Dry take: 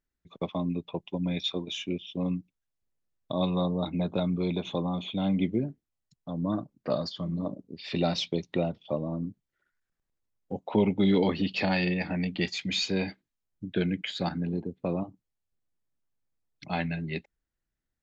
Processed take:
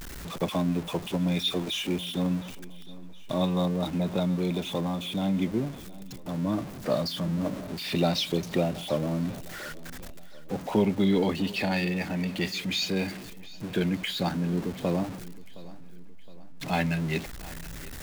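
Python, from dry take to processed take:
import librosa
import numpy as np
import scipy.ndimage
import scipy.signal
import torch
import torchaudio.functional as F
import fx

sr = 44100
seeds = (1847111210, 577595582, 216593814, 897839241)

y = x + 0.5 * 10.0 ** (-35.0 / 20.0) * np.sign(x)
y = fx.rider(y, sr, range_db=3, speed_s=2.0)
y = fx.echo_feedback(y, sr, ms=716, feedback_pct=50, wet_db=-19.5)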